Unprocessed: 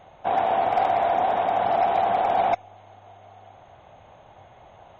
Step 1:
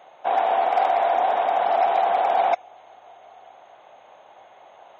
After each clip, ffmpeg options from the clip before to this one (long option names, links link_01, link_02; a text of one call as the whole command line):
ffmpeg -i in.wav -af "highpass=430,volume=2dB" out.wav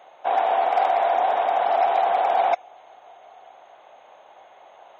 ffmpeg -i in.wav -af "bass=frequency=250:gain=-6,treble=frequency=4000:gain=0" out.wav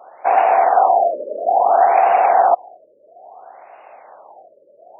ffmpeg -i in.wav -af "highpass=frequency=300:poles=1,afftfilt=real='re*lt(b*sr/1024,600*pow(2900/600,0.5+0.5*sin(2*PI*0.59*pts/sr)))':imag='im*lt(b*sr/1024,600*pow(2900/600,0.5+0.5*sin(2*PI*0.59*pts/sr)))':win_size=1024:overlap=0.75,volume=8dB" out.wav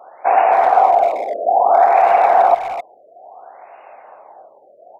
ffmpeg -i in.wav -filter_complex "[0:a]asplit=2[link_01][link_02];[link_02]adelay=260,highpass=300,lowpass=3400,asoftclip=type=hard:threshold=-12dB,volume=-10dB[link_03];[link_01][link_03]amix=inputs=2:normalize=0,volume=1dB" out.wav